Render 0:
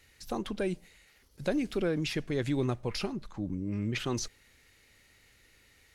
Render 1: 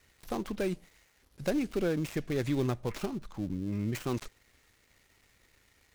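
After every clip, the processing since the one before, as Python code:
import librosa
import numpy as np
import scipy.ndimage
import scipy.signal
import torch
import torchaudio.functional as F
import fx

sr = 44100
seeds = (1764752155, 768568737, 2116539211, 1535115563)

y = fx.dead_time(x, sr, dead_ms=0.13)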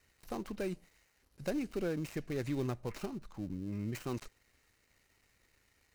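y = fx.notch(x, sr, hz=3400.0, q=11.0)
y = y * librosa.db_to_amplitude(-5.5)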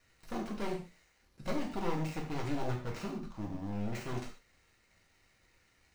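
y = np.minimum(x, 2.0 * 10.0 ** (-35.5 / 20.0) - x)
y = fx.peak_eq(y, sr, hz=14000.0, db=-10.0, octaves=0.87)
y = fx.rev_gated(y, sr, seeds[0], gate_ms=170, shape='falling', drr_db=-1.0)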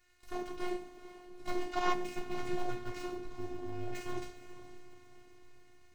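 y = fx.echo_diffused(x, sr, ms=455, feedback_pct=53, wet_db=-13.0)
y = fx.spec_box(y, sr, start_s=1.72, length_s=0.21, low_hz=620.0, high_hz=7500.0, gain_db=9)
y = fx.robotise(y, sr, hz=358.0)
y = y * librosa.db_to_amplitude(1.0)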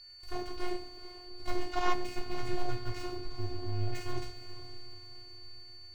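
y = fx.low_shelf_res(x, sr, hz=130.0, db=6.5, q=3.0)
y = y + 10.0 ** (-51.0 / 20.0) * np.sin(2.0 * np.pi * 4500.0 * np.arange(len(y)) / sr)
y = y * librosa.db_to_amplitude(1.0)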